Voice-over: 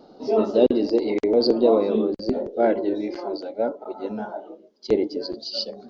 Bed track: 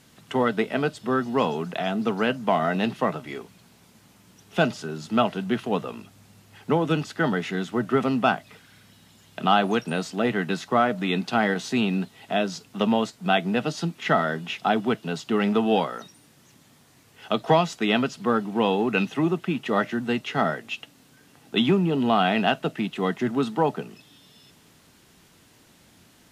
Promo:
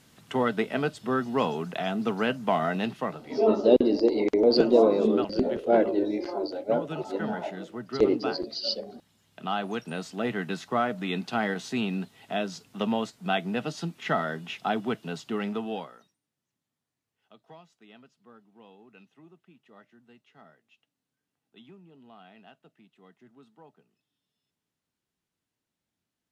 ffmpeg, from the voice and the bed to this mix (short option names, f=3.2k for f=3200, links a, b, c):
-filter_complex "[0:a]adelay=3100,volume=-1.5dB[a];[1:a]volume=4dB,afade=t=out:st=2.63:d=0.79:silence=0.334965,afade=t=in:st=9.3:d=0.99:silence=0.446684,afade=t=out:st=15.14:d=1.03:silence=0.0530884[b];[a][b]amix=inputs=2:normalize=0"